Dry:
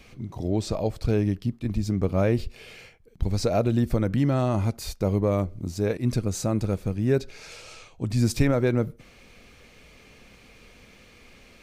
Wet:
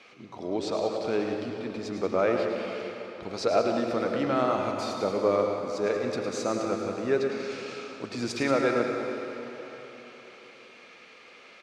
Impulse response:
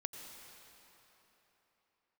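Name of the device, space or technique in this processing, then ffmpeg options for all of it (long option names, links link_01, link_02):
station announcement: -filter_complex "[0:a]highpass=400,lowpass=4800,equalizer=frequency=1300:width_type=o:width=0.31:gain=5,aecho=1:1:107.9|186.6:0.355|0.282[link_01];[1:a]atrim=start_sample=2205[link_02];[link_01][link_02]afir=irnorm=-1:irlink=0,volume=4dB"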